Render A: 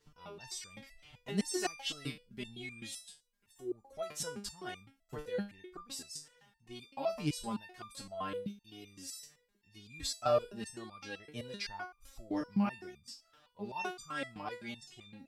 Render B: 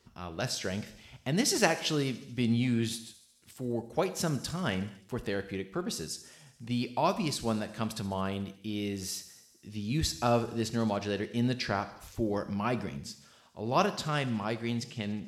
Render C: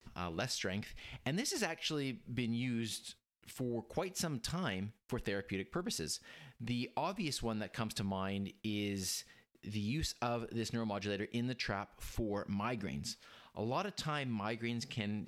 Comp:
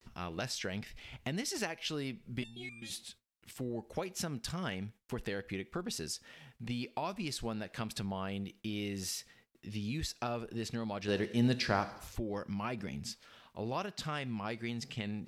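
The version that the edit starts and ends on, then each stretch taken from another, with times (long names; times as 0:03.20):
C
0:02.42–0:02.90: punch in from A
0:11.08–0:12.16: punch in from B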